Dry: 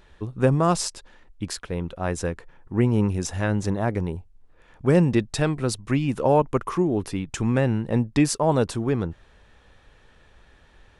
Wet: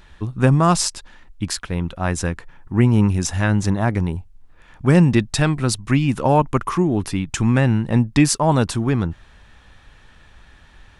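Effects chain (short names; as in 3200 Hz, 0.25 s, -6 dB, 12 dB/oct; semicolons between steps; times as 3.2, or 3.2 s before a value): bell 470 Hz -8.5 dB 0.94 oct; gain +7 dB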